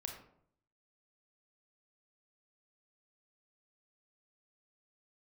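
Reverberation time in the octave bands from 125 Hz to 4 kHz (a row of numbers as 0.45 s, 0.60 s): 0.85 s, 0.75 s, 0.70 s, 0.60 s, 0.45 s, 0.35 s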